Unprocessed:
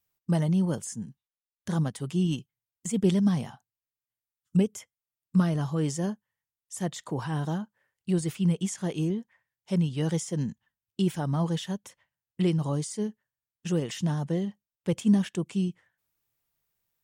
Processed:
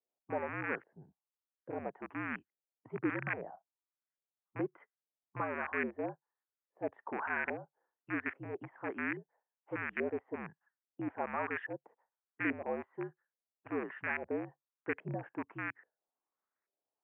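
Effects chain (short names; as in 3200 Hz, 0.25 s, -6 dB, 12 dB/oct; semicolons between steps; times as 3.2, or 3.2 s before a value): rattling part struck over -30 dBFS, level -21 dBFS; dynamic EQ 1800 Hz, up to +8 dB, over -50 dBFS, Q 2.6; LFO low-pass saw up 1.2 Hz 580–1900 Hz; mistuned SSB -63 Hz 320–2500 Hz; gain -6.5 dB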